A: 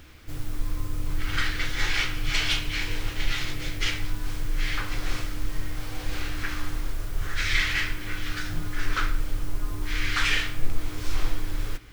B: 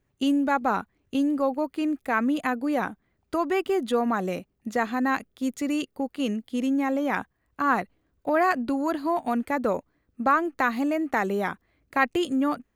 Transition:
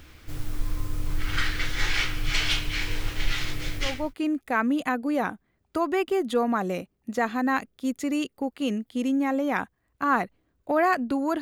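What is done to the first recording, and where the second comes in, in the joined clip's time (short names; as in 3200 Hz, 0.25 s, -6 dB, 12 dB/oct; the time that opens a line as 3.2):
A
3.95 switch to B from 1.53 s, crossfade 0.38 s linear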